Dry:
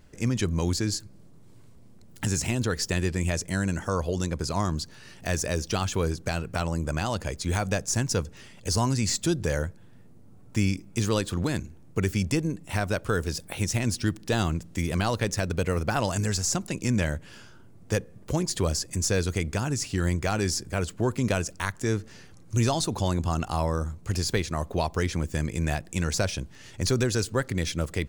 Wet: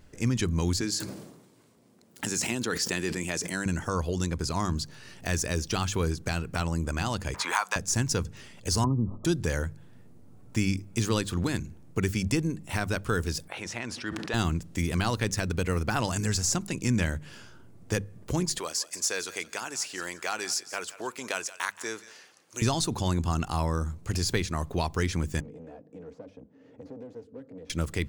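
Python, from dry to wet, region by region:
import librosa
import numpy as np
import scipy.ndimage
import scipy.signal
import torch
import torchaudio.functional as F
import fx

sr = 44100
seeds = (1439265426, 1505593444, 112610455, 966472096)

y = fx.chain(x, sr, fx.highpass(hz=230.0, slope=12),
    fx.sustainer(db_per_s=57.0), at=(0.81, 3.66))
y = fx.chain(y, sr, fx.highpass_res(hz=1000.0, q=4.1),
    fx.band_squash(depth_pct=70), at=(7.34, 7.76))
y = fx.chain(y, sr, fx.brickwall_lowpass(high_hz=1300.0),
    fx.band_squash(depth_pct=100), at=(8.84, 9.25))
y = fx.chain(y, sr, fx.bandpass_q(hz=1200.0, q=0.72),
    fx.sustainer(db_per_s=29.0), at=(13.48, 14.34))
y = fx.chain(y, sr, fx.highpass(hz=590.0, slope=12),
    fx.echo_thinned(ms=174, feedback_pct=25, hz=1100.0, wet_db=-14.5), at=(18.58, 22.62))
y = fx.chain(y, sr, fx.clip_hard(threshold_db=-30.0),
    fx.double_bandpass(hz=360.0, octaves=0.71),
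    fx.band_squash(depth_pct=70), at=(25.4, 27.7))
y = fx.hum_notches(y, sr, base_hz=50, count=4)
y = fx.dynamic_eq(y, sr, hz=590.0, q=2.0, threshold_db=-42.0, ratio=4.0, max_db=-6)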